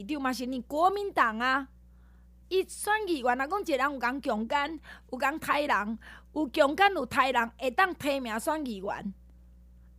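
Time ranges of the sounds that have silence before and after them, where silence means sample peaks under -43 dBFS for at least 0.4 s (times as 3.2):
2.51–9.12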